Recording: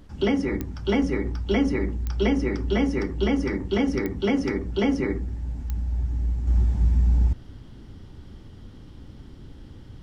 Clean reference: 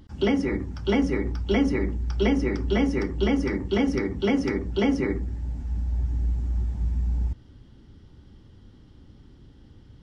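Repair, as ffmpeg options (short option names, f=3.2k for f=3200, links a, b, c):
-af "adeclick=t=4,agate=range=-21dB:threshold=-36dB,asetnsamples=n=441:p=0,asendcmd='6.47 volume volume -6dB',volume=0dB"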